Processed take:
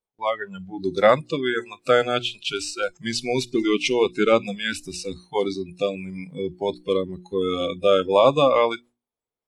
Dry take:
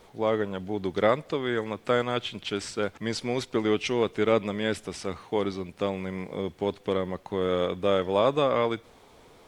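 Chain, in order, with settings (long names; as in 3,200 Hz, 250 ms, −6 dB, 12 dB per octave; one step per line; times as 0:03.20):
noise reduction from a noise print of the clip's start 26 dB
noise gate with hold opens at −58 dBFS
mains-hum notches 60/120/180/240/300/360 Hz
level +7.5 dB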